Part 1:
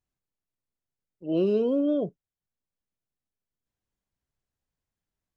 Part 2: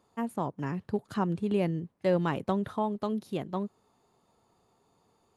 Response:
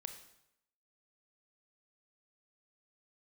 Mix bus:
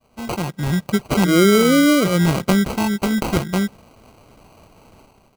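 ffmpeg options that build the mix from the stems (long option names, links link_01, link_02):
-filter_complex "[0:a]volume=-4dB,asplit=2[link_01][link_02];[1:a]aecho=1:1:5.6:0.57,aexciter=amount=13.8:drive=8.7:freq=3100,agate=range=-33dB:threshold=-48dB:ratio=3:detection=peak,volume=-7dB,asplit=2[link_03][link_04];[link_04]volume=-23.5dB[link_05];[link_02]apad=whole_len=237023[link_06];[link_03][link_06]sidechaincompress=threshold=-46dB:ratio=3:attack=25:release=150[link_07];[2:a]atrim=start_sample=2205[link_08];[link_05][link_08]afir=irnorm=-1:irlink=0[link_09];[link_01][link_07][link_09]amix=inputs=3:normalize=0,lowshelf=frequency=310:gain=11.5,dynaudnorm=framelen=180:gausssize=5:maxgain=10dB,acrusher=samples=25:mix=1:aa=0.000001"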